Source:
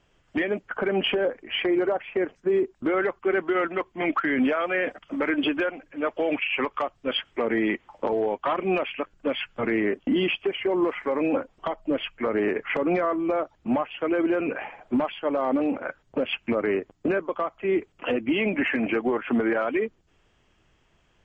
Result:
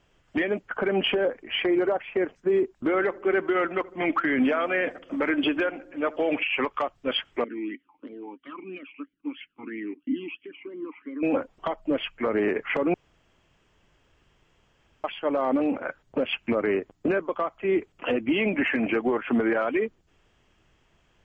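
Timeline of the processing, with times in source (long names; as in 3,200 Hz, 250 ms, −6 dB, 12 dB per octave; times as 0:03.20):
0:02.77–0:06.43: feedback echo with a low-pass in the loop 77 ms, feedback 71%, low-pass 1,100 Hz, level −19.5 dB
0:07.44–0:11.23: formant filter swept between two vowels i-u 3 Hz
0:12.94–0:15.04: fill with room tone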